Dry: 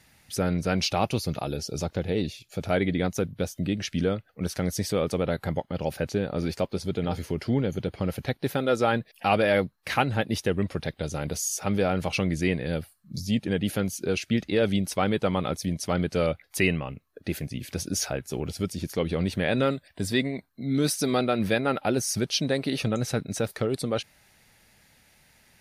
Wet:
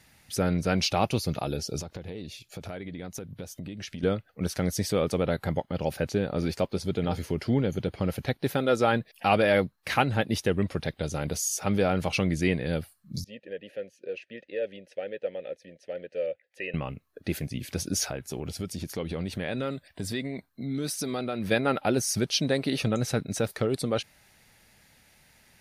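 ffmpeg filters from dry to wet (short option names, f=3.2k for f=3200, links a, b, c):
-filter_complex "[0:a]asettb=1/sr,asplit=3[a][b][c];[a]atrim=end=1.804[d];[b]atrim=start=1.8:end=4.03,asetpts=PTS-STARTPTS,afade=t=in:d=0.004:c=qsin,afade=t=out:st=2.226:d=0.004:c=qsin,acompressor=threshold=-34dB:ratio=8:attack=3.2:release=140:knee=1:detection=peak[e];[c]atrim=start=4.026[f];[d][e]acrossfade=d=0.004:c1=hsin:c2=qsin[g];[g][f]acrossfade=d=0.004:c1=qsin:c2=hsin,asettb=1/sr,asplit=3[h][i][j];[h]atrim=end=13.244[k];[i]atrim=start=13.24:end=16.74,asetpts=PTS-STARTPTS,afade=t=in:d=0.004:c=qsin,afade=t=out:st=3.496:d=0.004:c=qsin,asplit=3[l][m][n];[l]bandpass=f=530:t=q:w=8,volume=0dB[o];[m]bandpass=f=1.84k:t=q:w=8,volume=-6dB[p];[n]bandpass=f=2.48k:t=q:w=8,volume=-9dB[q];[o][p][q]amix=inputs=3:normalize=0[r];[j]atrim=start=16.736[s];[k][r]acrossfade=d=0.004:c1=hsin:c2=qsin[t];[t][s]acrossfade=d=0.004:c1=qsin:c2=hsin,asettb=1/sr,asplit=3[u][v][w];[u]atrim=end=18.084[x];[v]atrim=start=18.08:end=21.51,asetpts=PTS-STARTPTS,afade=t=in:d=0.004:c=qsin,afade=t=out:st=3.426:d=0.004:c=qsin,acompressor=threshold=-30dB:ratio=2.5:attack=3.2:release=140:knee=1:detection=peak[y];[w]atrim=start=21.506[z];[x][y]acrossfade=d=0.004:c1=hsin:c2=qsin[aa];[aa][z]acrossfade=d=0.004:c1=qsin:c2=hsin"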